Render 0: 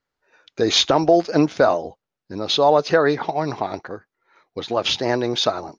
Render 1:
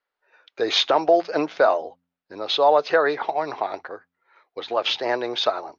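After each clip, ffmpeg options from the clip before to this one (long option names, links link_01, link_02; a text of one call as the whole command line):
ffmpeg -i in.wav -filter_complex "[0:a]acrossover=split=390 4500:gain=0.112 1 0.1[link_01][link_02][link_03];[link_01][link_02][link_03]amix=inputs=3:normalize=0,bandreject=frequency=87.33:width_type=h:width=4,bandreject=frequency=174.66:width_type=h:width=4,bandreject=frequency=261.99:width_type=h:width=4" out.wav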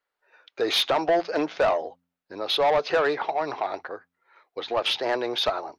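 ffmpeg -i in.wav -af "asoftclip=type=tanh:threshold=-16dB" out.wav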